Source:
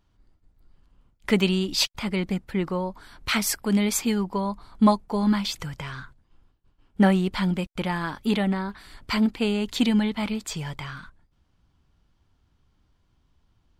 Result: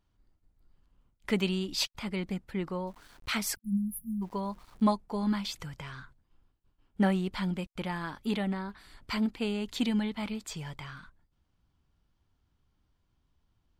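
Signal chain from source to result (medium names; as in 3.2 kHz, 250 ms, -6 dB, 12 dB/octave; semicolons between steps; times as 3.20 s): 2.87–4.84 s: small samples zeroed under -47 dBFS; 3.56–4.22 s: spectral selection erased 230–9500 Hz; trim -7.5 dB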